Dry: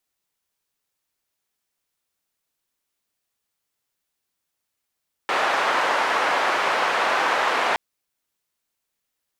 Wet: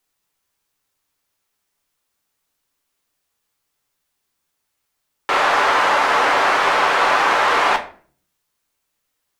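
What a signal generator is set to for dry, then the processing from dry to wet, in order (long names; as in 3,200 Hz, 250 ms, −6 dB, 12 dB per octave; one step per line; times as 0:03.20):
band-limited noise 640–1,300 Hz, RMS −21.5 dBFS 2.47 s
parametric band 1,100 Hz +3 dB 0.77 octaves
in parallel at −4 dB: soft clipping −20 dBFS
on the sum: rectangular room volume 39 cubic metres, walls mixed, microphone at 0.33 metres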